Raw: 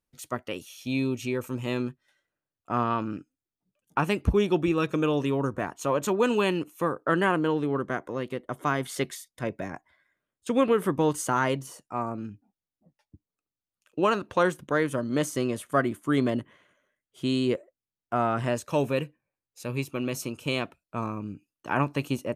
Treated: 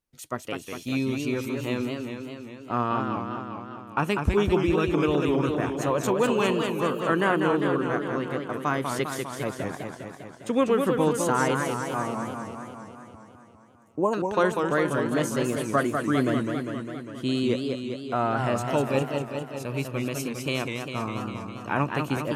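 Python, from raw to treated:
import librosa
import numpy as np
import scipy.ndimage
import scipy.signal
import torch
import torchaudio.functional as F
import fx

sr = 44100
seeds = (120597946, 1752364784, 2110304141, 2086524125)

y = fx.spec_box(x, sr, start_s=12.9, length_s=1.23, low_hz=1100.0, high_hz=6100.0, gain_db=-25)
y = fx.echo_warbled(y, sr, ms=201, feedback_pct=68, rate_hz=2.8, cents=185, wet_db=-5.0)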